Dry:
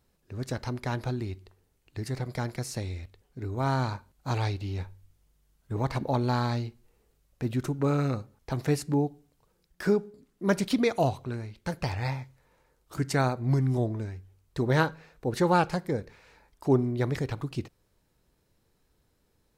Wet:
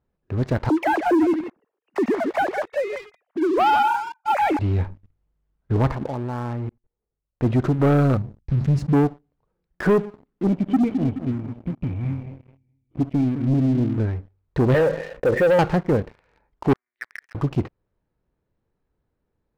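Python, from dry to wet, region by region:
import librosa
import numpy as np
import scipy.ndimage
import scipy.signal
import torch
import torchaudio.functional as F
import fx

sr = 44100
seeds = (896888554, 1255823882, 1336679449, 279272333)

y = fx.chain(x, sr, fx.sine_speech(),
    fx.echo_single(ms=159, db=-10.0), at=(0.69, 4.59))
y = fx.chain(y, sr, fx.lowpass(hz=2100.0, slope=12),
    fx.level_steps(step_db=20), at=(5.91, 7.43))
y = fx.chain(y, sr, fx.curve_eq(hz=(200.0, 550.0, 6200.0), db=(0, -29, -6)),
    fx.sustainer(db_per_s=120.0), at=(8.17, 8.93))
y = fx.chain(y, sr, fx.formant_cascade(vowel='i'),
    fx.low_shelf(hz=120.0, db=7.5),
    fx.echo_feedback(ms=212, feedback_pct=43, wet_db=-11), at=(10.47, 13.98))
y = fx.chain(y, sr, fx.leveller(passes=2),
    fx.formant_cascade(vowel='e'),
    fx.env_flatten(amount_pct=50), at=(14.74, 15.59))
y = fx.chain(y, sr, fx.ladder_bandpass(hz=1900.0, resonance_pct=70),
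    fx.tilt_eq(slope=3.5),
    fx.power_curve(exponent=1.4), at=(16.73, 17.35))
y = scipy.signal.sosfilt(scipy.signal.bessel(2, 1500.0, 'lowpass', norm='mag', fs=sr, output='sos'), y)
y = fx.leveller(y, sr, passes=3)
y = y * 10.0 ** (1.5 / 20.0)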